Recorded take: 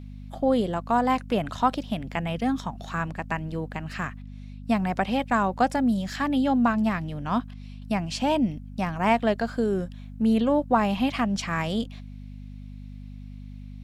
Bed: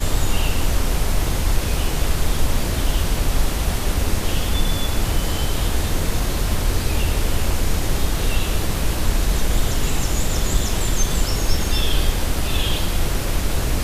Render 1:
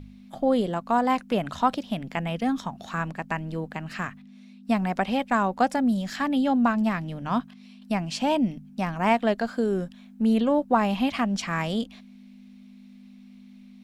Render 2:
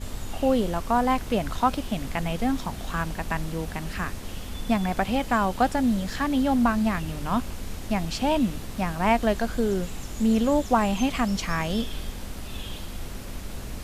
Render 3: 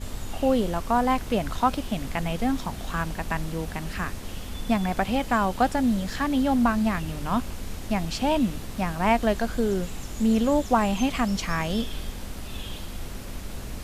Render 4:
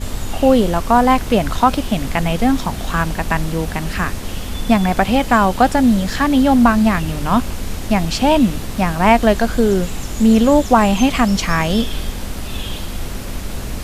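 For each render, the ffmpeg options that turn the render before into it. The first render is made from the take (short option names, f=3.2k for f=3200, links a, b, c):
-af "bandreject=f=50:t=h:w=4,bandreject=f=100:t=h:w=4,bandreject=f=150:t=h:w=4"
-filter_complex "[1:a]volume=-15dB[a];[0:a][a]amix=inputs=2:normalize=0"
-af anull
-af "volume=10dB,alimiter=limit=-1dB:level=0:latency=1"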